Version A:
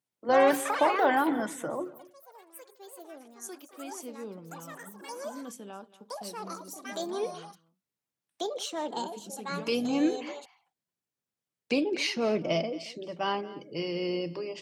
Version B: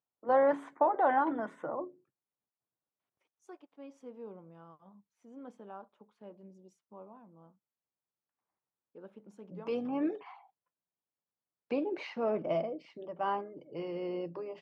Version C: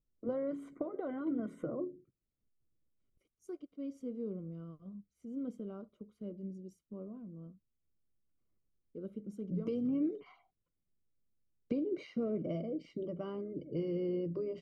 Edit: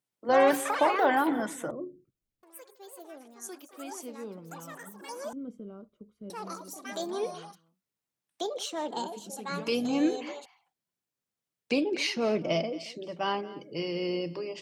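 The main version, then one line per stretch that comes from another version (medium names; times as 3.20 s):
A
1.71–2.43 s: from C
5.33–6.30 s: from C
not used: B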